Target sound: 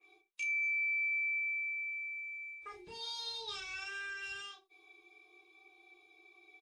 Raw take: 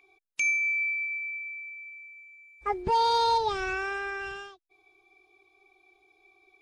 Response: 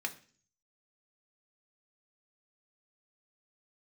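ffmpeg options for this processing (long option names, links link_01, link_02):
-filter_complex "[0:a]areverse,acompressor=threshold=-33dB:ratio=12,areverse,aecho=1:1:12|31:0.531|0.631,acrossover=split=130|3000[link_01][link_02][link_03];[link_02]acompressor=threshold=-48dB:ratio=3[link_04];[link_01][link_04][link_03]amix=inputs=3:normalize=0[link_05];[1:a]atrim=start_sample=2205,afade=type=out:start_time=0.21:duration=0.01,atrim=end_sample=9702,asetrate=66150,aresample=44100[link_06];[link_05][link_06]afir=irnorm=-1:irlink=0,adynamicequalizer=threshold=0.00251:dfrequency=1700:dqfactor=0.7:tfrequency=1700:tqfactor=0.7:attack=5:release=100:ratio=0.375:range=2:mode=boostabove:tftype=highshelf"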